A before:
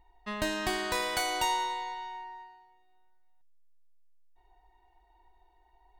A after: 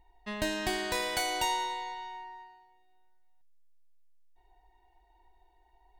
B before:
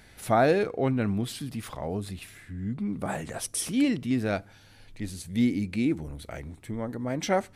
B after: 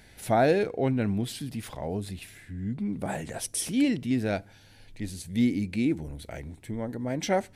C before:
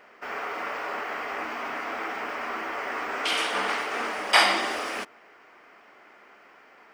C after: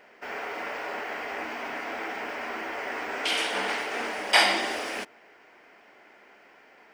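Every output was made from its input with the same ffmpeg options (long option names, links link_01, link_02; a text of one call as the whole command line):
ffmpeg -i in.wav -af "equalizer=frequency=1200:width=4.1:gain=-9" out.wav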